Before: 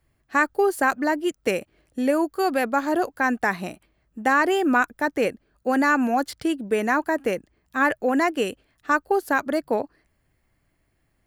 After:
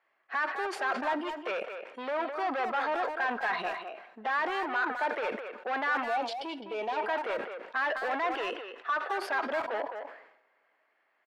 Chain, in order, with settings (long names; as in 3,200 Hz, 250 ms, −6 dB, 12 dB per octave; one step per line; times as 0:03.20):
noise reduction from a noise print of the clip's start 10 dB
mid-hump overdrive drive 31 dB, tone 1,500 Hz, clips at −6.5 dBFS
brickwall limiter −16 dBFS, peak gain reduction 7.5 dB
gain on a spectral selection 0:06.02–0:06.97, 1,000–2,200 Hz −13 dB
band-pass filter 740–2,900 Hz
far-end echo of a speakerphone 210 ms, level −7 dB
on a send at −21.5 dB: convolution reverb, pre-delay 3 ms
on the sum: level that may fall only so fast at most 74 dB per second
level −6 dB